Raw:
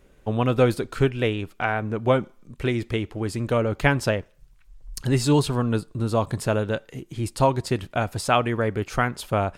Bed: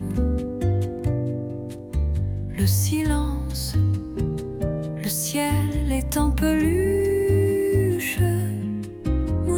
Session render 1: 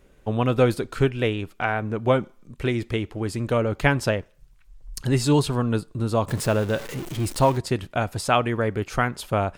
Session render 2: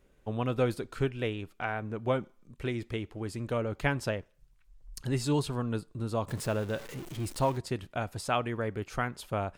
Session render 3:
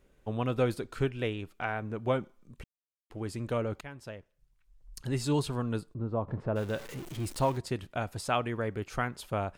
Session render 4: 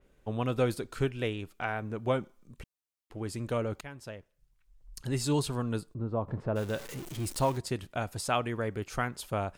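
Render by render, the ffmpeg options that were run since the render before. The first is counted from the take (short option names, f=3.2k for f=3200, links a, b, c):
-filter_complex "[0:a]asettb=1/sr,asplit=3[a][b][c];[a]atrim=end=6.284[d];[b]atrim=start=6.28:end=7.58,asetpts=PTS-STARTPTS,afade=t=in:d=0.004:c=qsin,afade=t=out:st=1.296:d=0.004:c=qsin,aeval=exprs='val(0)+0.5*0.0299*sgn(val(0))':c=same[e];[c]atrim=start=7.576[f];[d][e]acrossfade=d=0.004:c1=hsin:c2=qsin[g];[g][f]acrossfade=d=0.004:c1=qsin:c2=hsin"
-af "volume=-9dB"
-filter_complex "[0:a]asplit=3[a][b][c];[a]afade=t=out:st=5.93:d=0.02[d];[b]lowpass=1.1k,afade=t=in:st=5.93:d=0.02,afade=t=out:st=6.55:d=0.02[e];[c]afade=t=in:st=6.55:d=0.02[f];[d][e][f]amix=inputs=3:normalize=0,asplit=4[g][h][i][j];[g]atrim=end=2.64,asetpts=PTS-STARTPTS,afade=t=out:st=2.636:d=0.004:c=hsin[k];[h]atrim=start=2.64:end=3.1,asetpts=PTS-STARTPTS,volume=0[l];[i]atrim=start=3.1:end=3.81,asetpts=PTS-STARTPTS,afade=t=in:d=0.004:c=hsin,afade=t=out:st=0.706:d=0.004:c=hsin:silence=0.112202[m];[j]atrim=start=3.81,asetpts=PTS-STARTPTS,afade=t=in:d=1.58:silence=0.112202[n];[k][l][m][n]concat=n=4:v=0:a=1"
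-af "adynamicequalizer=threshold=0.00251:dfrequency=4400:dqfactor=0.7:tfrequency=4400:tqfactor=0.7:attack=5:release=100:ratio=0.375:range=2.5:mode=boostabove:tftype=highshelf"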